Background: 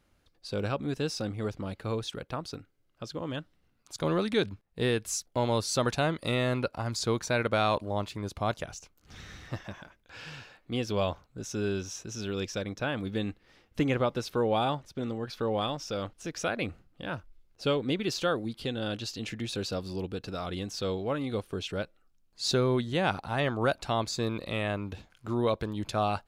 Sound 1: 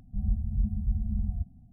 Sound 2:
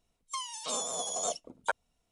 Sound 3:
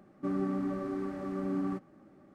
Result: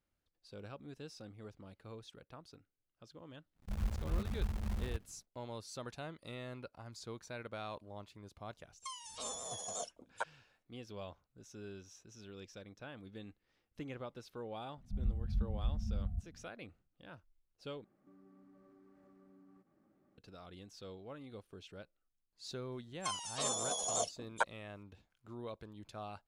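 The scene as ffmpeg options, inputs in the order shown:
-filter_complex "[1:a]asplit=2[s0][s1];[2:a]asplit=2[s2][s3];[0:a]volume=0.126[s4];[s0]acrusher=bits=7:dc=4:mix=0:aa=0.000001[s5];[3:a]acompressor=threshold=0.00224:ratio=3:attack=9.9:release=95:knee=1:detection=peak[s6];[s4]asplit=2[s7][s8];[s7]atrim=end=17.844[s9];[s6]atrim=end=2.34,asetpts=PTS-STARTPTS,volume=0.188[s10];[s8]atrim=start=20.176[s11];[s5]atrim=end=1.72,asetpts=PTS-STARTPTS,volume=0.376,afade=t=in:d=0.1,afade=t=out:st=1.62:d=0.1,adelay=3540[s12];[s2]atrim=end=2.11,asetpts=PTS-STARTPTS,volume=0.355,afade=t=in:d=0.004:c=hsin,afade=t=out:st=2.106:d=0.004:c=hsin,adelay=8520[s13];[s1]atrim=end=1.72,asetpts=PTS-STARTPTS,volume=0.422,afade=t=in:d=0.004:c=hsin,afade=t=out:st=1.716:d=0.004:c=hsin,adelay=14770[s14];[s3]atrim=end=2.11,asetpts=PTS-STARTPTS,volume=0.75,afade=t=in:d=0.004:c=hsin,afade=t=out:st=2.106:d=0.004:c=hsin,adelay=22720[s15];[s9][s10]acrossfade=d=0.004:c1=hsin:c2=hsin[s16];[s16][s11]acrossfade=d=0.004:c1=hsin:c2=hsin[s17];[s17][s12][s13][s14][s15]amix=inputs=5:normalize=0"

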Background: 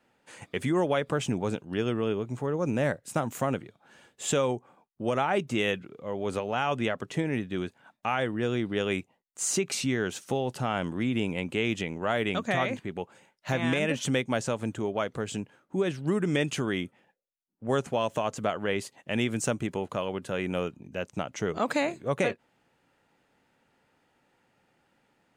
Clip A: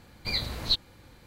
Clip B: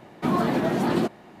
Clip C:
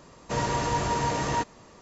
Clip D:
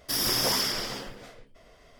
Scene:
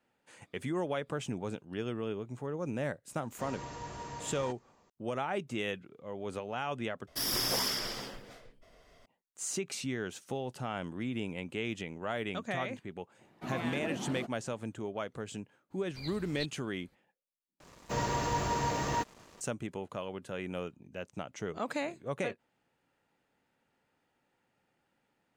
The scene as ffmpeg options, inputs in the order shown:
-filter_complex "[3:a]asplit=2[s0][s1];[0:a]volume=0.398[s2];[2:a]aphaser=in_gain=1:out_gain=1:delay=1.8:decay=0.28:speed=1.5:type=triangular[s3];[s1]acrusher=bits=7:mix=0:aa=0.5[s4];[s2]asplit=3[s5][s6][s7];[s5]atrim=end=7.074[s8];[4:a]atrim=end=1.99,asetpts=PTS-STARTPTS,volume=0.531[s9];[s6]atrim=start=9.056:end=17.604[s10];[s4]atrim=end=1.81,asetpts=PTS-STARTPTS,volume=0.562[s11];[s7]atrim=start=19.406[s12];[s0]atrim=end=1.81,asetpts=PTS-STARTPTS,volume=0.15,afade=t=in:d=0.004:c=hsin,afade=t=out:st=1.806:d=0.004:c=hsin,adelay=136269S[s13];[s3]atrim=end=1.4,asetpts=PTS-STARTPTS,volume=0.15,afade=t=in:d=0.004:c=hsin,afade=t=out:st=1.396:d=0.004:c=hsin,adelay=13190[s14];[1:a]atrim=end=1.26,asetpts=PTS-STARTPTS,volume=0.15,afade=t=in:d=0.02,afade=t=out:st=1.24:d=0.02,adelay=15700[s15];[s8][s9]acrossfade=d=0.004:c1=hsin:c2=hsin[s16];[s16][s10]acrossfade=d=0.004:c1=hsin:c2=hsin[s17];[s17][s11]acrossfade=d=0.004:c1=hsin:c2=hsin[s18];[s18][s12]acrossfade=d=0.004:c1=hsin:c2=hsin[s19];[s19][s13][s14][s15]amix=inputs=4:normalize=0"

